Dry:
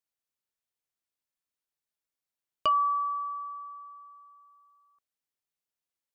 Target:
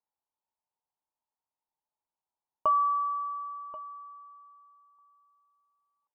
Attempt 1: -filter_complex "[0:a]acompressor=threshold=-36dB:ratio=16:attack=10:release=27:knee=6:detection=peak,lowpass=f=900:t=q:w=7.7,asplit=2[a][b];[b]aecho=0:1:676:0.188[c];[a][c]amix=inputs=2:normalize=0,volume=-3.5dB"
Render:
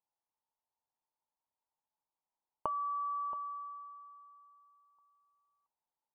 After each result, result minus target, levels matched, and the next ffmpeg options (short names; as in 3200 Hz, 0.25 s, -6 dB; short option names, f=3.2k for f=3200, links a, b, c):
compressor: peak gain reduction +13.5 dB; echo 0.408 s early
-filter_complex "[0:a]lowpass=f=900:t=q:w=7.7,asplit=2[a][b];[b]aecho=0:1:676:0.188[c];[a][c]amix=inputs=2:normalize=0,volume=-3.5dB"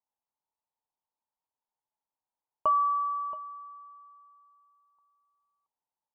echo 0.408 s early
-filter_complex "[0:a]lowpass=f=900:t=q:w=7.7,asplit=2[a][b];[b]aecho=0:1:1084:0.188[c];[a][c]amix=inputs=2:normalize=0,volume=-3.5dB"